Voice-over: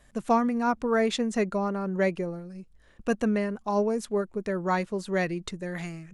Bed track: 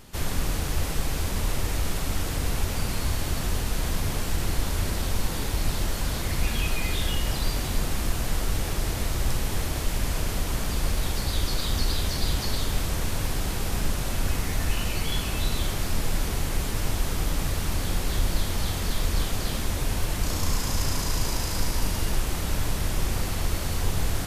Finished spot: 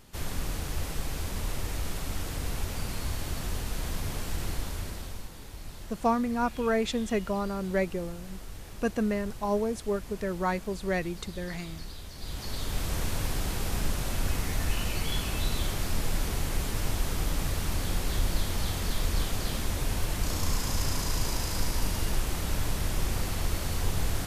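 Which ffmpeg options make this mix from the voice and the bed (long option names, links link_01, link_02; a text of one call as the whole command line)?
ffmpeg -i stem1.wav -i stem2.wav -filter_complex "[0:a]adelay=5750,volume=-2.5dB[link_01];[1:a]volume=7.5dB,afade=type=out:start_time=4.47:duration=0.84:silence=0.298538,afade=type=in:start_time=12.15:duration=0.82:silence=0.211349[link_02];[link_01][link_02]amix=inputs=2:normalize=0" out.wav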